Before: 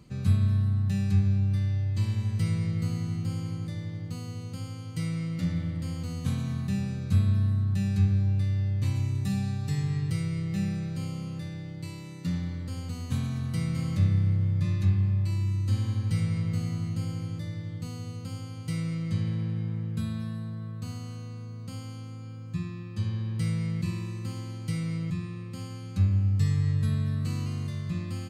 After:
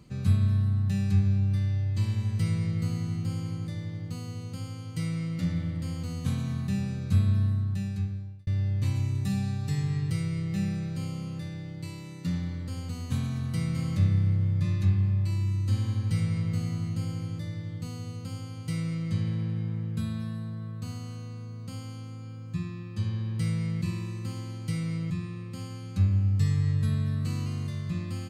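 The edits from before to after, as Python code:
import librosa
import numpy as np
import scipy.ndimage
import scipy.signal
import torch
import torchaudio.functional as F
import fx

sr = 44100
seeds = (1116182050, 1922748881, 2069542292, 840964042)

y = fx.edit(x, sr, fx.fade_out_span(start_s=7.43, length_s=1.04), tone=tone)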